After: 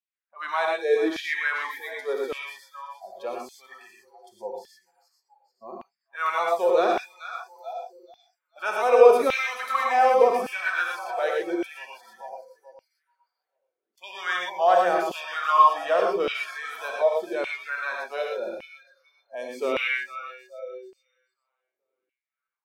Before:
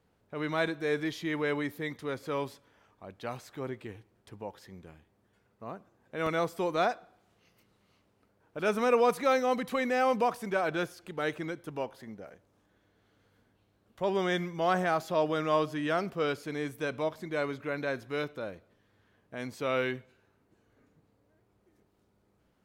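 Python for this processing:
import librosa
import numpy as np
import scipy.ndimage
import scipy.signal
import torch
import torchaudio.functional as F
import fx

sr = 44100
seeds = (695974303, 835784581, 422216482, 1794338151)

y = fx.low_shelf(x, sr, hz=130.0, db=-10.0, at=(1.47, 2.28))
y = fx.echo_split(y, sr, split_hz=380.0, low_ms=112, high_ms=434, feedback_pct=52, wet_db=-11)
y = fx.noise_reduce_blind(y, sr, reduce_db=27)
y = fx.rev_gated(y, sr, seeds[0], gate_ms=140, shape='rising', drr_db=-0.5)
y = fx.filter_lfo_highpass(y, sr, shape='saw_down', hz=0.86, low_hz=300.0, high_hz=2700.0, q=3.8)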